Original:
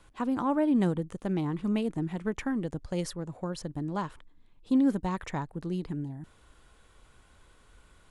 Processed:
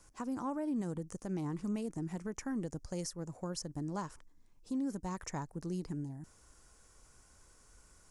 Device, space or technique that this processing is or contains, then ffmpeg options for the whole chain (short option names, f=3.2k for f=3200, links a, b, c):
over-bright horn tweeter: -af "highshelf=f=4.5k:t=q:w=3:g=8,alimiter=level_in=0.5dB:limit=-24dB:level=0:latency=1:release=125,volume=-0.5dB,volume=-5dB"